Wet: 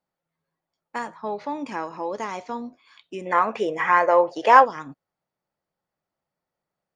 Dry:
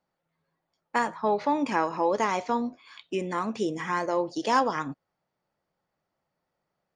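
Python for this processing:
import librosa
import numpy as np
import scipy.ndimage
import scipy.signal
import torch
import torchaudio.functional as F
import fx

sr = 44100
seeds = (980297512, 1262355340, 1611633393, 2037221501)

y = fx.band_shelf(x, sr, hz=1100.0, db=15.5, octaves=3.0, at=(3.25, 4.64), fade=0.02)
y = y * 10.0 ** (-4.5 / 20.0)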